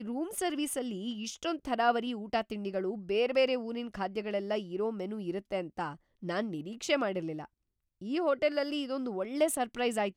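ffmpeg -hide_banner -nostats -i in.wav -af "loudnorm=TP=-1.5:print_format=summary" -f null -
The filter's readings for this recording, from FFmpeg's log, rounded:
Input Integrated:    -32.7 LUFS
Input True Peak:     -14.5 dBTP
Input LRA:             2.8 LU
Input Threshold:     -42.9 LUFS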